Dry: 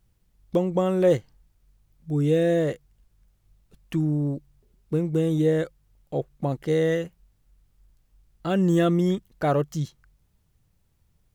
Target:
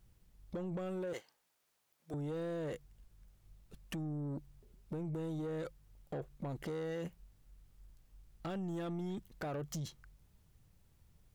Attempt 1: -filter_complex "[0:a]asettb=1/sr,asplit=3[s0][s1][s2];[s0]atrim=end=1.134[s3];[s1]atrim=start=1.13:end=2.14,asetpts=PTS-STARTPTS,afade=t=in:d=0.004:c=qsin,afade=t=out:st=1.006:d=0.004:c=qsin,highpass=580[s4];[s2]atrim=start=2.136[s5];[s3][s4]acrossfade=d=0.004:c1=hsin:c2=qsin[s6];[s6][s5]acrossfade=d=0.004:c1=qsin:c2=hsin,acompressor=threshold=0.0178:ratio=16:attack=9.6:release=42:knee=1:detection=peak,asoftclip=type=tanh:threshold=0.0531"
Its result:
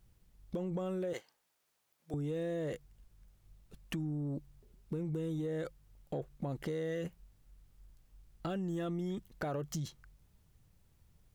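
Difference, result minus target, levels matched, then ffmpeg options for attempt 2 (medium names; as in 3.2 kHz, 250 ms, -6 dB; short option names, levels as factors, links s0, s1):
saturation: distortion -13 dB
-filter_complex "[0:a]asettb=1/sr,asplit=3[s0][s1][s2];[s0]atrim=end=1.134[s3];[s1]atrim=start=1.13:end=2.14,asetpts=PTS-STARTPTS,afade=t=in:d=0.004:c=qsin,afade=t=out:st=1.006:d=0.004:c=qsin,highpass=580[s4];[s2]atrim=start=2.136[s5];[s3][s4]acrossfade=d=0.004:c1=hsin:c2=qsin[s6];[s6][s5]acrossfade=d=0.004:c1=qsin:c2=hsin,acompressor=threshold=0.0178:ratio=16:attack=9.6:release=42:knee=1:detection=peak,asoftclip=type=tanh:threshold=0.0178"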